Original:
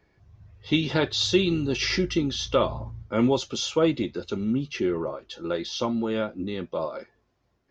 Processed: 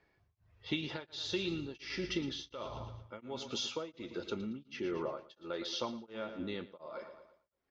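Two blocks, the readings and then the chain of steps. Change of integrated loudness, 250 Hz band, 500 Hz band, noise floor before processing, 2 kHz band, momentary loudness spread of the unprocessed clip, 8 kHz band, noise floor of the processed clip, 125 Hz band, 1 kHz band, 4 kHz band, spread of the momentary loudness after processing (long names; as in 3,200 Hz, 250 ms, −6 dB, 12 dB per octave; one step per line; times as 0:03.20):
−14.0 dB, −15.0 dB, −14.5 dB, −70 dBFS, −11.5 dB, 9 LU, can't be measured, −77 dBFS, −16.0 dB, −13.0 dB, −11.0 dB, 10 LU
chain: low-shelf EQ 400 Hz −9 dB
downward compressor, threshold −28 dBFS, peak gain reduction 9 dB
high-frequency loss of the air 85 metres
on a send: repeating echo 114 ms, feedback 52%, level −13 dB
on the sum: tremolo along a rectified sine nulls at 1.4 Hz
level −2.5 dB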